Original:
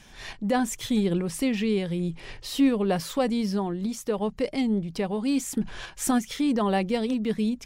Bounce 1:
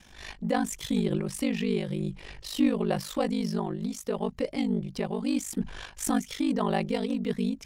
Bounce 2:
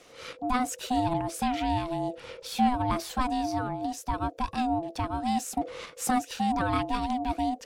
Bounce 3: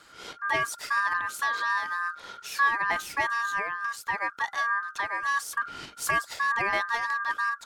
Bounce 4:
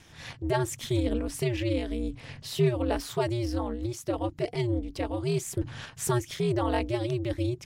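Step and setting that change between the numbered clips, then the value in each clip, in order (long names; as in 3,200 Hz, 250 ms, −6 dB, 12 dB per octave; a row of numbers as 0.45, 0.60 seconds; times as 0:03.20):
ring modulation, frequency: 25, 500, 1,400, 120 Hertz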